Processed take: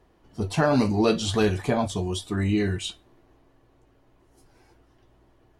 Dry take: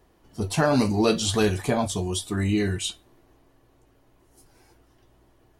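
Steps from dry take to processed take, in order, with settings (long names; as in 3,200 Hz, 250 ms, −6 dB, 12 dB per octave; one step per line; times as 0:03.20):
high-shelf EQ 7,100 Hz −12 dB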